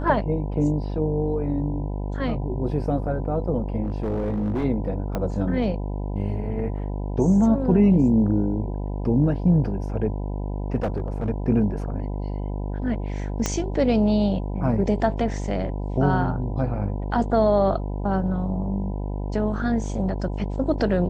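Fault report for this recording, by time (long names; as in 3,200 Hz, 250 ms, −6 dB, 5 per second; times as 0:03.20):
mains buzz 50 Hz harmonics 20 −28 dBFS
0:03.83–0:04.65: clipping −21 dBFS
0:05.15: click −14 dBFS
0:10.75–0:11.30: clipping −20 dBFS
0:13.46: click −9 dBFS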